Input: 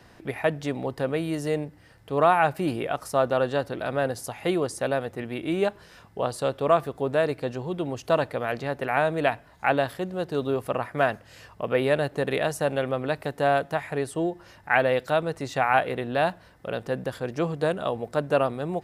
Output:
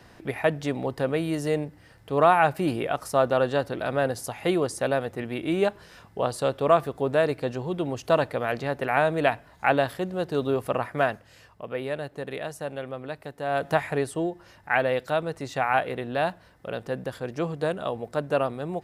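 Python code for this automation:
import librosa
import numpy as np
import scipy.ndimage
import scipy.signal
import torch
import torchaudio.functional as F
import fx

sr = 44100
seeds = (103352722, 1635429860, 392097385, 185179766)

y = fx.gain(x, sr, db=fx.line((10.88, 1.0), (11.65, -8.0), (13.46, -8.0), (13.71, 5.0), (14.31, -2.0)))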